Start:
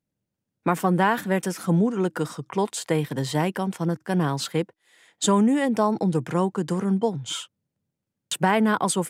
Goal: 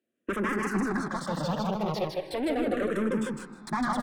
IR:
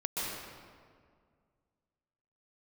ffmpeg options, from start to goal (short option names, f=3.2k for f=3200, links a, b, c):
-filter_complex "[0:a]highpass=f=94:w=0.5412,highpass=f=94:w=1.3066,atempo=2,equalizer=f=820:w=1.8:g=-5.5,bandreject=f=1.9k:w=9.9,asplit=2[a][b];[b]highpass=f=720:p=1,volume=28dB,asoftclip=type=tanh:threshold=-10.5dB[c];[a][c]amix=inputs=2:normalize=0,lowpass=f=1.2k:p=1,volume=-6dB,aecho=1:1:176|352|528:0.708|0.113|0.0181,asetrate=49833,aresample=44100,asplit=2[d][e];[1:a]atrim=start_sample=2205,lowpass=3.4k[f];[e][f]afir=irnorm=-1:irlink=0,volume=-16.5dB[g];[d][g]amix=inputs=2:normalize=0,asplit=2[h][i];[i]afreqshift=-0.37[j];[h][j]amix=inputs=2:normalize=1,volume=-8.5dB"